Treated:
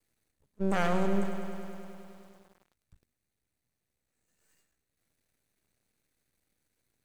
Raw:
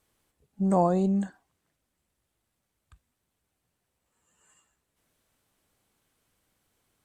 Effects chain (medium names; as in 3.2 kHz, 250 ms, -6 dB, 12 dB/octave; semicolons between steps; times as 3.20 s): comb filter that takes the minimum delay 0.47 ms; half-wave rectifier; bit-crushed delay 102 ms, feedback 80%, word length 9-bit, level -10 dB